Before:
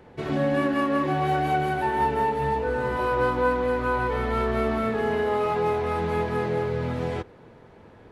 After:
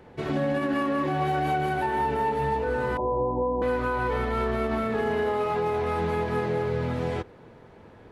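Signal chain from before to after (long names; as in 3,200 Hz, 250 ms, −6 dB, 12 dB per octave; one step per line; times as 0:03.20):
0:02.97–0:03.62: Butterworth low-pass 1,000 Hz 96 dB per octave
brickwall limiter −18 dBFS, peak gain reduction 6.5 dB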